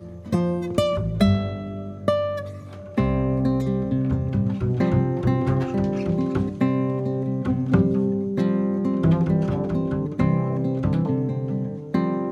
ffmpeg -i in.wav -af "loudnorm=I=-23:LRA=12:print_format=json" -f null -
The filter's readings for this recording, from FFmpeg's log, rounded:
"input_i" : "-23.4",
"input_tp" : "-5.9",
"input_lra" : "1.6",
"input_thresh" : "-33.5",